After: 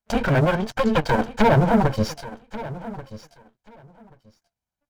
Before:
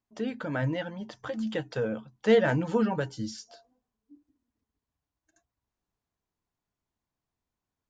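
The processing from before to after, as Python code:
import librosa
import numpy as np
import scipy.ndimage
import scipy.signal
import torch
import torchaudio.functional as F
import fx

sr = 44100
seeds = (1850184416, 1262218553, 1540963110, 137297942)

y = fx.lower_of_two(x, sr, delay_ms=1.3)
y = fx.env_lowpass_down(y, sr, base_hz=980.0, full_db=-26.0)
y = fx.leveller(y, sr, passes=3)
y = fx.stretch_grains(y, sr, factor=0.62, grain_ms=109.0)
y = fx.echo_feedback(y, sr, ms=1134, feedback_pct=16, wet_db=-16.0)
y = y * 10.0 ** (6.5 / 20.0)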